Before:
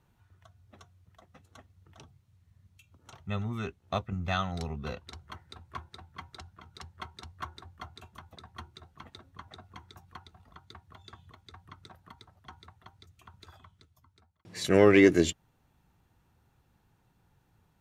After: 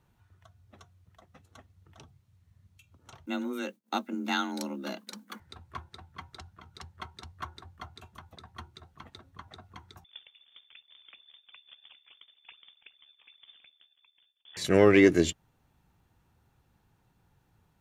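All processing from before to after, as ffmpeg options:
-filter_complex "[0:a]asettb=1/sr,asplit=3[a][b][c];[a]atrim=end=3.264[d];[b]atrim=start=3.26:end=5.4,asetpts=PTS-STARTPTS,afade=t=in:d=0.004:c=qsin,afade=t=out:st=2.136:d=0.004:c=qsin,aemphasis=mode=production:type=50fm,agate=range=-33dB:threshold=-55dB:ratio=3:release=100:detection=peak,afreqshift=130[e];[c]atrim=start=5.396[f];[d][e]acrossfade=d=0.004:c1=hsin:c2=qsin[g];[g][f]acrossfade=d=0.004:c1=qsin:c2=hsin,asettb=1/sr,asplit=3[h][i][j];[h]atrim=end=10.044[k];[i]atrim=start=10.04:end=14.57,asetpts=PTS-STARTPTS,afade=t=in:d=0.004:c=qsin,afade=t=out:st=4.526:d=0.004:c=qsin,acrusher=samples=26:mix=1:aa=0.000001:lfo=1:lforange=41.6:lforate=2.4,aeval=exprs='val(0)*sin(2*PI*36*n/s)':c=same,lowpass=f=3.1k:t=q:w=0.5098,lowpass=f=3.1k:t=q:w=0.6013,lowpass=f=3.1k:t=q:w=0.9,lowpass=f=3.1k:t=q:w=2.563,afreqshift=-3600[l];[j]atrim=start=14.566[m];[k][l]acrossfade=d=0.004:c1=hsin:c2=qsin[n];[n][m]acrossfade=d=0.004:c1=qsin:c2=hsin"

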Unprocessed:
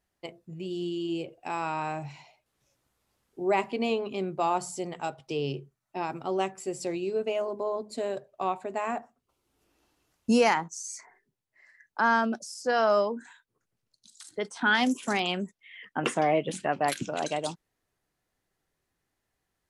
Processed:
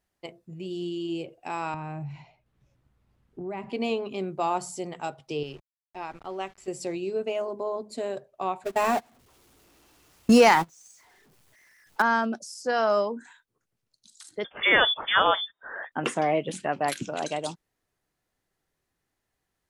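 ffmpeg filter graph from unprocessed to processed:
-filter_complex "[0:a]asettb=1/sr,asplit=3[a][b][c];[a]atrim=end=1.744[d];[b]atrim=start=1.74:end=3.7,asetpts=PTS-STARTPTS,afade=t=in:d=0.004:c=qsin,afade=t=out:st=1.956:d=0.004:c=qsin,bass=f=250:g=14,treble=f=4k:g=-12,acompressor=threshold=-35dB:ratio=3:attack=3.2:release=140:knee=1:detection=peak[e];[c]atrim=start=3.696[f];[d][e]acrossfade=d=0.004:c1=hsin:c2=qsin[g];[g][f]acrossfade=d=0.004:c1=qsin:c2=hsin,asettb=1/sr,asplit=3[h][i][j];[h]atrim=end=5.434[k];[i]atrim=start=5.43:end=6.68,asetpts=PTS-STARTPTS,afade=t=in:d=0.004:c=qsin,afade=t=out:st=1.246:d=0.004:c=qsin,highpass=f=1.1k:p=1,aeval=exprs='val(0)*gte(abs(val(0)),0.00316)':c=same,aemphasis=mode=reproduction:type=bsi[l];[j]atrim=start=6.676[m];[k][l]acrossfade=d=0.004:c1=hsin:c2=qsin[n];[n][m]acrossfade=d=0.004:c1=qsin:c2=hsin,asettb=1/sr,asplit=3[o][p][q];[o]atrim=end=8.644[r];[p]atrim=start=8.64:end=12.02,asetpts=PTS-STARTPTS,afade=t=in:d=0.004:c=qsin,afade=t=out:st=3.376:d=0.004:c=qsin,aeval=exprs='val(0)+0.5*0.0211*sgn(val(0))':c=same,agate=range=-26dB:threshold=-31dB:ratio=16:release=100:detection=peak,acontrast=31[s];[q]atrim=start=12.016[t];[r][s]acrossfade=d=0.004:c1=hsin:c2=qsin[u];[u][t]acrossfade=d=0.004:c1=qsin:c2=hsin,asettb=1/sr,asplit=3[v][w][x];[v]atrim=end=14.444[y];[w]atrim=start=14.44:end=15.92,asetpts=PTS-STARTPTS,afade=t=in:d=0.004:c=qsin,afade=t=out:st=1.476:d=0.004:c=qsin,highshelf=f=1.7k:t=q:w=1.5:g=11,lowpass=f=3.1k:t=q:w=0.5098,lowpass=f=3.1k:t=q:w=0.6013,lowpass=f=3.1k:t=q:w=0.9,lowpass=f=3.1k:t=q:w=2.563,afreqshift=-3700[z];[x]atrim=start=15.916[aa];[y][z]acrossfade=d=0.004:c1=hsin:c2=qsin[ab];[ab][aa]acrossfade=d=0.004:c1=qsin:c2=hsin"

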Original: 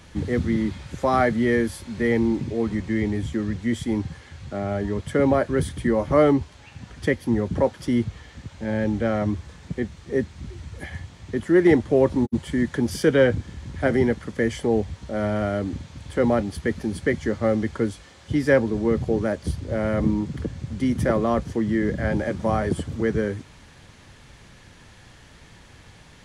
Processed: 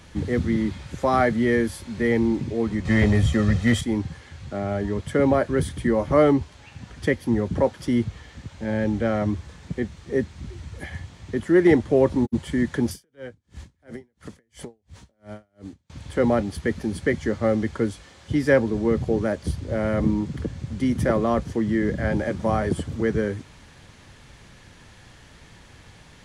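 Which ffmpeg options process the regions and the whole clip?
-filter_complex "[0:a]asettb=1/sr,asplit=3[a][b][c];[a]atrim=end=2.854[d];[b]atrim=start=2.85:end=3.81,asetpts=PTS-STARTPTS,afade=t=in:d=0.004:c=qsin,afade=t=out:st=0.956:d=0.004:c=qsin,aecho=1:1:1.6:0.6,atrim=end_sample=42336,acontrast=86,asoftclip=type=hard:threshold=-12dB[e];[c]atrim=start=3.806[f];[d][e]acrossfade=d=0.004:c1=hsin:c2=qsin[g];[g][f]acrossfade=d=0.004:c1=qsin:c2=hsin,asettb=1/sr,asplit=3[h][i][j];[h]atrim=end=12.914[k];[i]atrim=start=12.91:end=15.9,asetpts=PTS-STARTPTS,afade=t=in:d=0.004:c=qsin,afade=t=out:st=2.986:d=0.004:c=qsin,highshelf=f=7.1k:g=9,acompressor=threshold=-31dB:ratio=6:attack=3.2:release=140:knee=1:detection=peak,aeval=exprs='val(0)*pow(10,-38*(0.5-0.5*cos(2*PI*2.9*n/s))/20)':c=same[l];[j]atrim=start=15.896[m];[k][l]acrossfade=d=0.004:c1=hsin:c2=qsin[n];[n][m]acrossfade=d=0.004:c1=qsin:c2=hsin"

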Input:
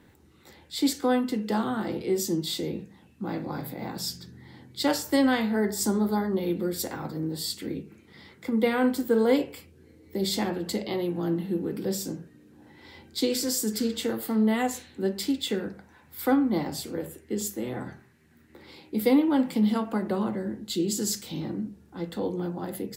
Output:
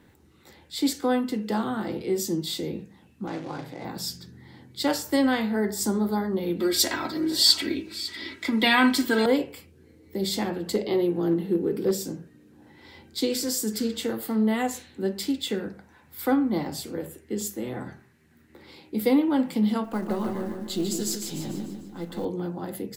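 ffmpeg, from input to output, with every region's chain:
-filter_complex "[0:a]asettb=1/sr,asplit=3[a][b][c];[a]atrim=end=3.274[d];[b]atrim=start=3.27:end=3.85,asetpts=PTS-STARTPTS,afade=t=in:d=0.004:c=qsin,afade=t=out:st=0.576:d=0.004:c=qsin,equalizer=f=210:w=5.5:g=-14,acrusher=bits=3:mode=log:mix=0:aa=0.000001,highpass=120,lowpass=5k[e];[c]atrim=start=3.846[f];[d][e]acrossfade=d=0.004:c1=hsin:c2=qsin[g];[g][f]acrossfade=d=0.004:c1=qsin:c2=hsin,asettb=1/sr,asplit=3[h][i][j];[h]atrim=end=6.604[k];[i]atrim=start=6.6:end=9.26,asetpts=PTS-STARTPTS,afade=t=in:d=0.004:c=qsin,afade=t=out:st=2.656:d=0.004:c=qsin,equalizer=f=3.3k:t=o:w=2.8:g=14,aecho=1:1:3.1:0.78,atrim=end_sample=117306,aecho=1:1:552:0.178,atrim=end_sample=117306[l];[j]atrim=start=9.256[m];[k][l]acrossfade=d=0.004:c1=hsin:c2=qsin[n];[n][m]acrossfade=d=0.004:c1=qsin:c2=hsin,asettb=1/sr,asplit=3[o][p][q];[o]atrim=end=10.744[r];[p]atrim=start=10.74:end=12.04,asetpts=PTS-STARTPTS,afade=t=in:d=0.004:c=qsin,afade=t=out:st=1.296:d=0.004:c=qsin,equalizer=f=410:t=o:w=0.56:g=9,asoftclip=type=hard:threshold=-15.5dB[s];[q]atrim=start=12.036[t];[r][s]acrossfade=d=0.004:c1=hsin:c2=qsin[u];[u][t]acrossfade=d=0.004:c1=qsin:c2=hsin,asettb=1/sr,asplit=3[v][w][x];[v]atrim=end=19.844[y];[w]atrim=start=19.84:end=22.25,asetpts=PTS-STARTPTS,afade=t=in:d=0.004:c=qsin,afade=t=out:st=2.406:d=0.004:c=qsin,aeval=exprs='if(lt(val(0),0),0.708*val(0),val(0))':c=same,acrusher=bits=7:mode=log:mix=0:aa=0.000001,aecho=1:1:148|296|444|592|740|888:0.501|0.241|0.115|0.0554|0.0266|0.0128,atrim=end_sample=106281[z];[x]atrim=start=22.246[aa];[y][z]acrossfade=d=0.004:c1=hsin:c2=qsin[ab];[ab][aa]acrossfade=d=0.004:c1=qsin:c2=hsin"

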